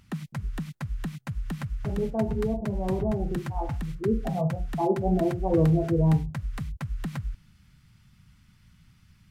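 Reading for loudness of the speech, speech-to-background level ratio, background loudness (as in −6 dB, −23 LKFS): −27.5 LKFS, 7.5 dB, −35.0 LKFS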